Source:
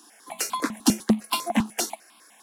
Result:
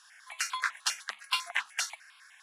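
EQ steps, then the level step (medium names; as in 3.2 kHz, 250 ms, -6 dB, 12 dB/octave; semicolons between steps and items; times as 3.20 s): ladder high-pass 1.3 kHz, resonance 45%; distance through air 61 m; +7.5 dB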